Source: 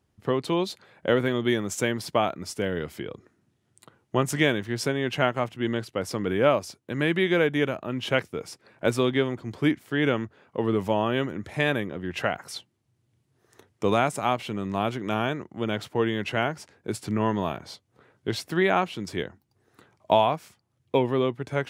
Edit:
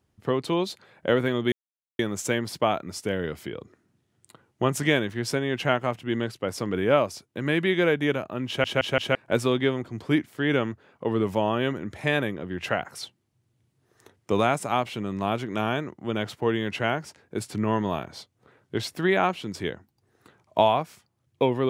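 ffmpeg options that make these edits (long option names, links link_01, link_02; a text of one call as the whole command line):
ffmpeg -i in.wav -filter_complex "[0:a]asplit=6[link_01][link_02][link_03][link_04][link_05][link_06];[link_01]atrim=end=1.52,asetpts=PTS-STARTPTS,afade=type=out:start_time=1.516:duration=0.004:curve=hsin,apad=pad_dur=0.47[link_07];[link_02]atrim=start=1.52:end=8.172,asetpts=PTS-STARTPTS,afade=type=in:duration=0.004:curve=hsin[link_08];[link_03]atrim=start=7.998:end=8.172[link_09];[link_04]atrim=start=7.998:end=8.172[link_10];[link_05]atrim=start=7.998:end=8.172[link_11];[link_06]atrim=start=8.678[link_12];[link_07][link_08]concat=n=2:v=0:a=1[link_13];[link_13][link_09]acrossfade=duration=0.004:curve1=hsin:curve2=hsin[link_14];[link_14][link_10]acrossfade=duration=0.004:curve1=hsin:curve2=hsin[link_15];[link_15][link_11]acrossfade=duration=0.004:curve1=hsin:curve2=hsin[link_16];[link_16][link_12]acrossfade=duration=0.004:curve1=hsin:curve2=hsin" out.wav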